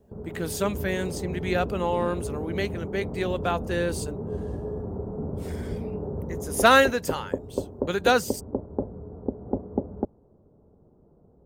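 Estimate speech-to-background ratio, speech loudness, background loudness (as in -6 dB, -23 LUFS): 7.5 dB, -26.0 LUFS, -33.5 LUFS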